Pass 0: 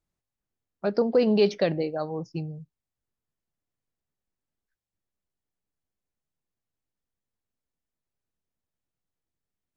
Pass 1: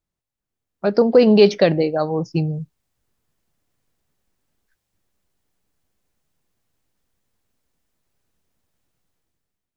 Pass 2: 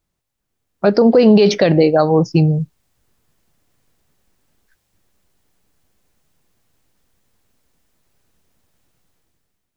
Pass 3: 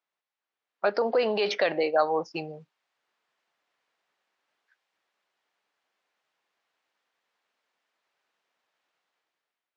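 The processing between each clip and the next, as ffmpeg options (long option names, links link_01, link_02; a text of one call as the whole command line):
ffmpeg -i in.wav -af "dynaudnorm=framelen=210:gausssize=7:maxgain=15dB" out.wav
ffmpeg -i in.wav -af "alimiter=level_in=11dB:limit=-1dB:release=50:level=0:latency=1,volume=-2dB" out.wav
ffmpeg -i in.wav -af "highpass=760,lowpass=3300,volume=-4dB" out.wav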